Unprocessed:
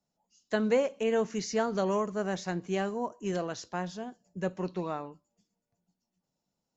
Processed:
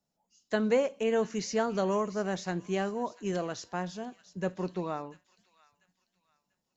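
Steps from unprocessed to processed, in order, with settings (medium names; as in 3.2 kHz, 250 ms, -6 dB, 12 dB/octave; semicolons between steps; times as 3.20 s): feedback echo behind a high-pass 692 ms, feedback 32%, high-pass 2.1 kHz, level -15 dB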